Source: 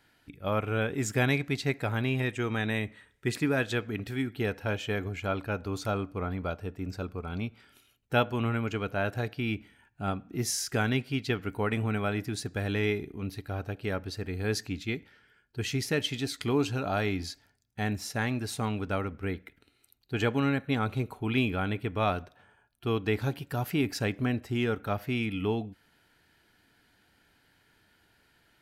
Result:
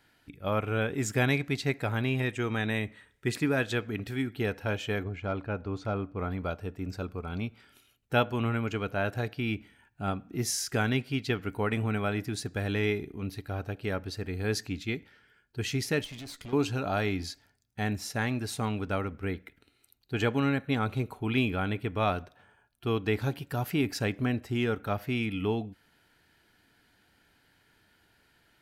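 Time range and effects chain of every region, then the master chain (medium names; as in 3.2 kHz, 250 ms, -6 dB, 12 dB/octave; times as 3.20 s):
5.03–6.19 s: hard clipper -21.5 dBFS + tape spacing loss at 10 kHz 21 dB
16.04–16.53 s: compression 3:1, threshold -33 dBFS + valve stage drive 38 dB, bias 0.65
whole clip: none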